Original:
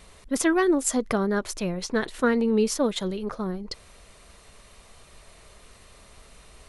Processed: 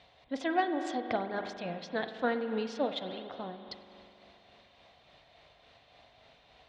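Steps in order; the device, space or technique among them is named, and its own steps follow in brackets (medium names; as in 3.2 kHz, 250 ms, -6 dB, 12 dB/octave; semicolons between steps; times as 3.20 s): combo amplifier with spring reverb and tremolo (spring tank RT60 2.9 s, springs 41 ms, chirp 60 ms, DRR 6 dB; tremolo 3.5 Hz, depth 34%; cabinet simulation 110–4400 Hz, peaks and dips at 200 Hz -9 dB, 390 Hz -8 dB, 730 Hz +10 dB, 1.2 kHz -7 dB, 3.5 kHz +6 dB); trim -6.5 dB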